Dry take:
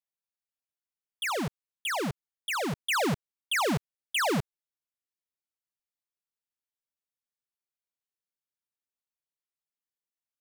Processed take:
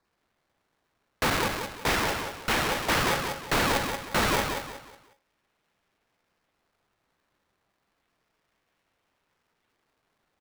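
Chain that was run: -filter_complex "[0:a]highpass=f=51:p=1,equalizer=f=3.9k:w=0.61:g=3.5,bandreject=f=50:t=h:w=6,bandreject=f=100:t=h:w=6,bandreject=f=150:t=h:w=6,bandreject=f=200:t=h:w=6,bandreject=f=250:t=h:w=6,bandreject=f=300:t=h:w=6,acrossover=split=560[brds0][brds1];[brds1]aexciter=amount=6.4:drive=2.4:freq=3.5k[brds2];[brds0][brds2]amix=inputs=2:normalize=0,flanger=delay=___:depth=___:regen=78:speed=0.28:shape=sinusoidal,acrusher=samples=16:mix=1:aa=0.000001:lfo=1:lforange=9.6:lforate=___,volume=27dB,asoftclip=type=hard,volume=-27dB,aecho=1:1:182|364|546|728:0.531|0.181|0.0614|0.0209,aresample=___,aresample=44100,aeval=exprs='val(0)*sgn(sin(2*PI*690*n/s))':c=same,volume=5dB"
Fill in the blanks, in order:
7, 1, 0.31, 11025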